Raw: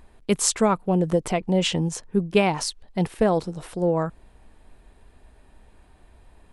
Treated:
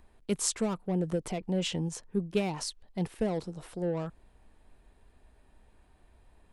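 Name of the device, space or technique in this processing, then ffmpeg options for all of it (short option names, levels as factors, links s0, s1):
one-band saturation: -filter_complex "[0:a]acrossover=split=510|3000[s0][s1][s2];[s1]asoftclip=type=tanh:threshold=0.0316[s3];[s0][s3][s2]amix=inputs=3:normalize=0,volume=0.398"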